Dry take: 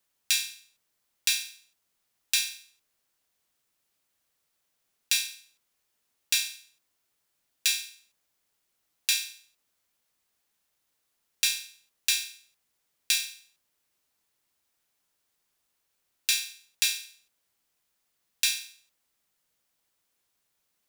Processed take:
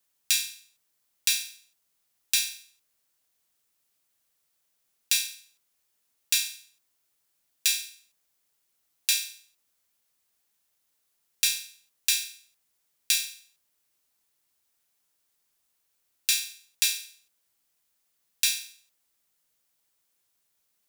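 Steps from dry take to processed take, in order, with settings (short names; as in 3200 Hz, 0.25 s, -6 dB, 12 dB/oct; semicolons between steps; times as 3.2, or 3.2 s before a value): high shelf 5300 Hz +6 dB; gain -2 dB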